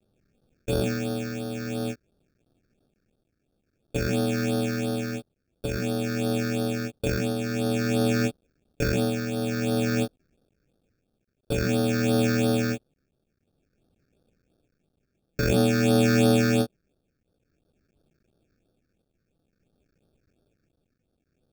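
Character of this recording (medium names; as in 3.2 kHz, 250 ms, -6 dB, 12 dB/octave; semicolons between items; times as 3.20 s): a quantiser's noise floor 12-bit, dither triangular; tremolo triangle 0.51 Hz, depth 60%; aliases and images of a low sample rate 1 kHz, jitter 0%; phasing stages 6, 2.9 Hz, lowest notch 800–2200 Hz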